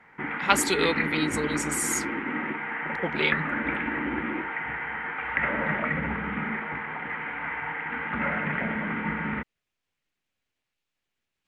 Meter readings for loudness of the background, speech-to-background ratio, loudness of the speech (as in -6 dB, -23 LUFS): -29.5 LUFS, 2.5 dB, -27.0 LUFS